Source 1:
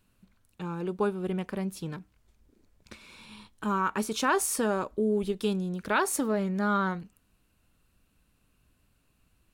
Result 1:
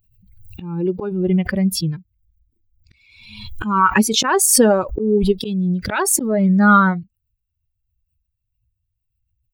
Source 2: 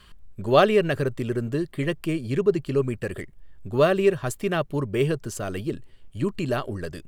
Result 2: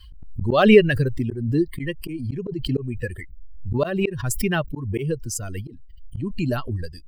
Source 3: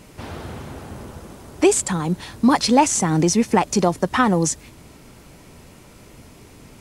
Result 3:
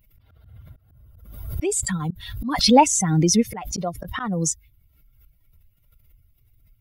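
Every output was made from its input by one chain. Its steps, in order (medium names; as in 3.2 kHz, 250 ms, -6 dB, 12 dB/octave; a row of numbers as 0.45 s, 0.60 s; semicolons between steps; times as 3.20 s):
expander on every frequency bin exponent 2; slow attack 269 ms; swell ahead of each attack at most 53 dB/s; peak normalisation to -1.5 dBFS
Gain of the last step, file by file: +18.5 dB, +10.0 dB, +3.0 dB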